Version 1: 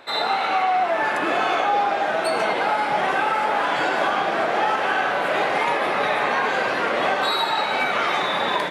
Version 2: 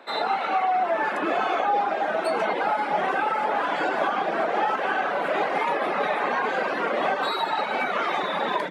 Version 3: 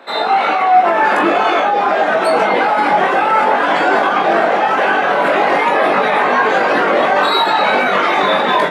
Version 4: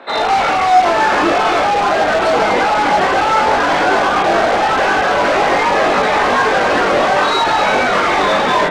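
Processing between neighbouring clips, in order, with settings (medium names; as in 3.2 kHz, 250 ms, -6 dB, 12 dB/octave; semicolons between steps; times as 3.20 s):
reverb removal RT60 0.62 s; steep high-pass 160 Hz 48 dB/octave; treble shelf 2.3 kHz -9 dB
level rider; peak limiter -13 dBFS, peak gain reduction 10 dB; on a send: flutter echo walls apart 3.5 m, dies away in 0.22 s; on the sum: trim +6.5 dB
in parallel at -5.5 dB: integer overflow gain 12 dB; on the sum: distance through air 110 m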